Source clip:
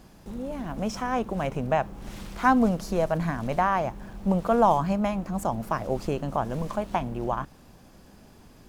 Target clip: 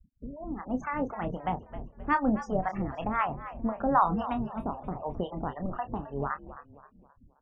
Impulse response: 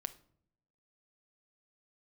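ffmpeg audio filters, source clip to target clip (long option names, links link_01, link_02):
-filter_complex "[0:a]afftfilt=real='re*gte(hypot(re,im),0.0224)':imag='im*gte(hypot(re,im),0.0224)':win_size=1024:overlap=0.75,acrossover=split=4600[link_01][link_02];[link_02]acompressor=threshold=-60dB:ratio=4:attack=1:release=60[link_03];[link_01][link_03]amix=inputs=2:normalize=0,acrossover=split=560[link_04][link_05];[link_04]aeval=exprs='val(0)*(1-1/2+1/2*cos(2*PI*3.3*n/s))':channel_layout=same[link_06];[link_05]aeval=exprs='val(0)*(1-1/2-1/2*cos(2*PI*3.3*n/s))':channel_layout=same[link_07];[link_06][link_07]amix=inputs=2:normalize=0,asplit=5[link_08][link_09][link_10][link_11][link_12];[link_09]adelay=309,afreqshift=-66,volume=-13.5dB[link_13];[link_10]adelay=618,afreqshift=-132,volume=-21dB[link_14];[link_11]adelay=927,afreqshift=-198,volume=-28.6dB[link_15];[link_12]adelay=1236,afreqshift=-264,volume=-36.1dB[link_16];[link_08][link_13][link_14][link_15][link_16]amix=inputs=5:normalize=0,asetrate=51597,aresample=44100,asplit=2[link_17][link_18];[link_18]adelay=28,volume=-9dB[link_19];[link_17][link_19]amix=inputs=2:normalize=0"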